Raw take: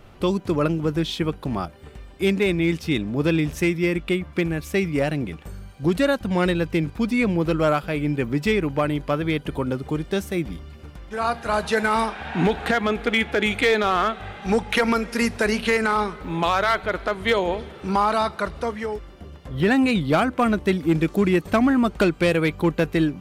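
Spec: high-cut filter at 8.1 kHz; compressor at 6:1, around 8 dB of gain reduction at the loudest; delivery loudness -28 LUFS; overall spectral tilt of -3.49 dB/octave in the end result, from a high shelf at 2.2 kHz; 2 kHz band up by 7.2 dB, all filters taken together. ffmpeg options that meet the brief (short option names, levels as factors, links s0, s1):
-af "lowpass=8100,equalizer=f=2000:t=o:g=4.5,highshelf=f=2200:g=8,acompressor=threshold=0.112:ratio=6,volume=0.631"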